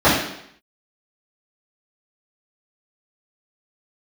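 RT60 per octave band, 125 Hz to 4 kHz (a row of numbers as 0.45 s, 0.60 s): 0.65 s, 0.70 s, 0.70 s, 0.70 s, 0.75 s, 0.70 s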